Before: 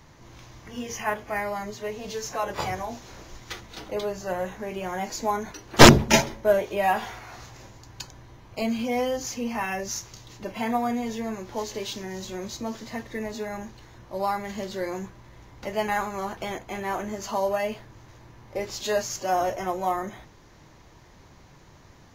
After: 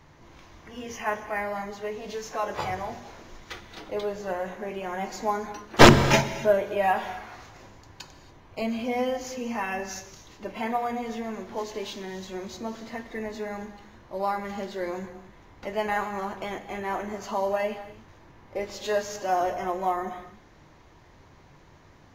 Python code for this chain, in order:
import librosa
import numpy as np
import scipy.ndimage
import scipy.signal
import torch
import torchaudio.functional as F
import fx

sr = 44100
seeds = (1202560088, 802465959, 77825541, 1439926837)

y = fx.bass_treble(x, sr, bass_db=-1, treble_db=-7)
y = fx.hum_notches(y, sr, base_hz=60, count=4)
y = fx.rev_gated(y, sr, seeds[0], gate_ms=310, shape='flat', drr_db=10.5)
y = y * librosa.db_to_amplitude(-1.0)